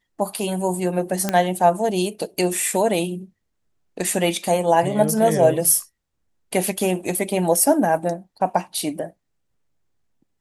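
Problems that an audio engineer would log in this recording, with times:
1.29 pop -6 dBFS

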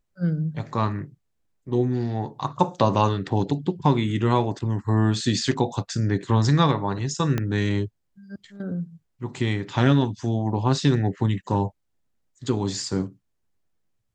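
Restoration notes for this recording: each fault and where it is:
7.38 pop -12 dBFS

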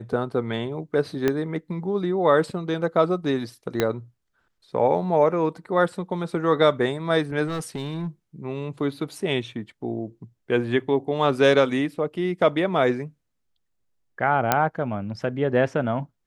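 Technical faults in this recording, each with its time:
1.28 pop -9 dBFS
3.8 pop -7 dBFS
7.47–8.07 clipped -24.5 dBFS
14.52 pop -3 dBFS

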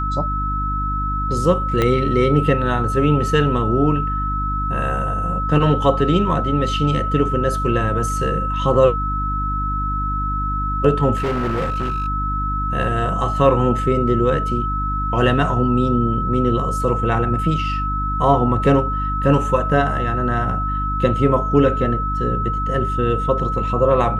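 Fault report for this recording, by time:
hum 50 Hz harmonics 6 -24 dBFS
tone 1300 Hz -22 dBFS
1.82 pop -6 dBFS
11.16–12.08 clipped -17.5 dBFS

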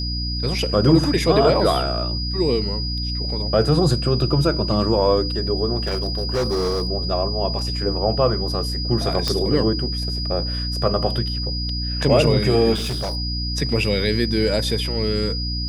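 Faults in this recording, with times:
hum 60 Hz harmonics 5 -26 dBFS
tone 4900 Hz -27 dBFS
5.78–6.88 clipped -17.5 dBFS
7.59 gap 2.6 ms
9.28 pop -8 dBFS
12.74–13.17 clipped -21.5 dBFS

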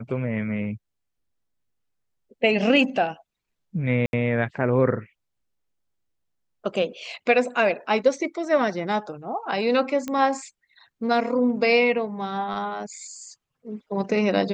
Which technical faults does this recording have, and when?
4.06–4.13 gap 71 ms
10.08 pop -16 dBFS

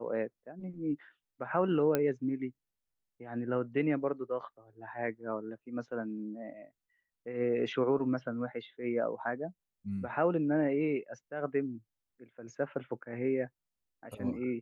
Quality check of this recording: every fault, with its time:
1.95 pop -15 dBFS

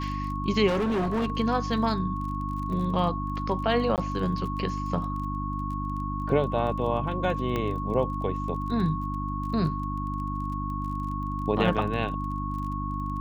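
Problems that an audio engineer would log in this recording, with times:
crackle 27/s -36 dBFS
hum 50 Hz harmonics 6 -32 dBFS
tone 1100 Hz -33 dBFS
0.67–1.32 clipped -23 dBFS
3.96–3.98 gap 18 ms
7.56 pop -16 dBFS

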